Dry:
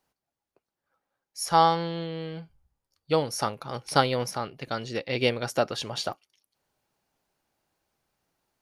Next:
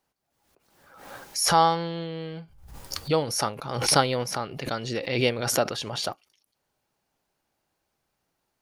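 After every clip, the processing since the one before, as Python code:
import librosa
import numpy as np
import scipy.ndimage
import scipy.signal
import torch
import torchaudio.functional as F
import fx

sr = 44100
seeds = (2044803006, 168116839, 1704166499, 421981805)

y = fx.pre_swell(x, sr, db_per_s=56.0)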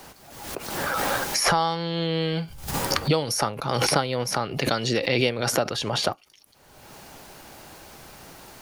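y = fx.band_squash(x, sr, depth_pct=100)
y = y * librosa.db_to_amplitude(2.5)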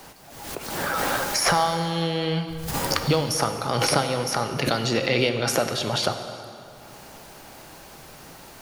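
y = fx.rev_plate(x, sr, seeds[0], rt60_s=2.7, hf_ratio=0.7, predelay_ms=0, drr_db=6.5)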